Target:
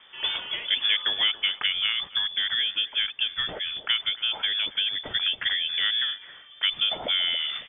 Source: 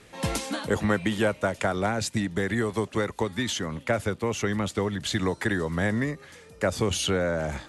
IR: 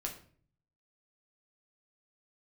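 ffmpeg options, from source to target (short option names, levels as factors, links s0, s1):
-filter_complex "[0:a]lowpass=f=3100:t=q:w=0.5098,lowpass=f=3100:t=q:w=0.6013,lowpass=f=3100:t=q:w=0.9,lowpass=f=3100:t=q:w=2.563,afreqshift=-3600,asplit=2[s0][s1];[s1]adelay=277,lowpass=f=880:p=1,volume=0.251,asplit=2[s2][s3];[s3]adelay=277,lowpass=f=880:p=1,volume=0.38,asplit=2[s4][s5];[s5]adelay=277,lowpass=f=880:p=1,volume=0.38,asplit=2[s6][s7];[s7]adelay=277,lowpass=f=880:p=1,volume=0.38[s8];[s0][s2][s4][s6][s8]amix=inputs=5:normalize=0"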